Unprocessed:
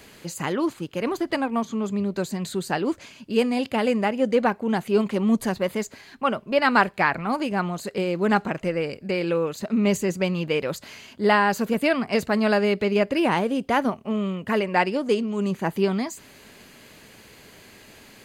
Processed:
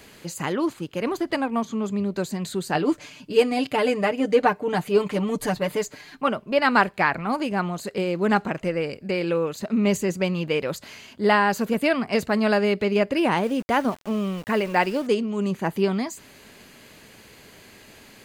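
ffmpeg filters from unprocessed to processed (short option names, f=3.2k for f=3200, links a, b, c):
-filter_complex "[0:a]asettb=1/sr,asplit=3[a][b][c];[a]atrim=end=2.744[d];[b]atrim=start=2.74:end=6.28,asetpts=PTS-STARTPTS,afade=t=in:d=0.004:c=qsin,afade=t=out:st=3.536:d=0.004:c=qsin,aecho=1:1:6.7:0.78,atrim=end_sample=156114[e];[c]atrim=start=6.276[f];[d][e]acrossfade=d=0.004:c1=hsin:c2=qsin[g];[g][f]acrossfade=d=0.004:c1=qsin:c2=hsin,asettb=1/sr,asplit=3[h][i][j];[h]atrim=end=13.434[k];[i]atrim=start=13.43:end=15.07,asetpts=PTS-STARTPTS,afade=t=in:d=0.004:c=qsin,afade=t=out:st=1.636:d=0.004:c=qsin,aeval=exprs='val(0)*gte(abs(val(0)),0.0133)':c=same[l];[j]atrim=start=15.066[m];[k][l]acrossfade=d=0.004:c1=hsin:c2=qsin[n];[n][m]acrossfade=d=0.004:c1=qsin:c2=hsin"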